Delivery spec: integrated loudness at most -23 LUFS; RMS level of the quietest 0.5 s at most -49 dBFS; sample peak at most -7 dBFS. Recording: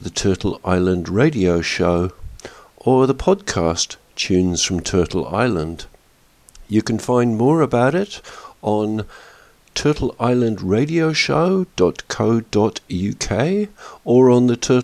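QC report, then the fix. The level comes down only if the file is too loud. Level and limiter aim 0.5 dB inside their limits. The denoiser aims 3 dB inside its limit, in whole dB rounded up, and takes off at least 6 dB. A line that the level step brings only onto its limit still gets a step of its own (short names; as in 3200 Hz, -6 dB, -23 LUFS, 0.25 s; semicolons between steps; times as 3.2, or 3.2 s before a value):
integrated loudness -18.5 LUFS: fail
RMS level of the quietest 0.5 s -54 dBFS: OK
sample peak -3.5 dBFS: fail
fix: gain -5 dB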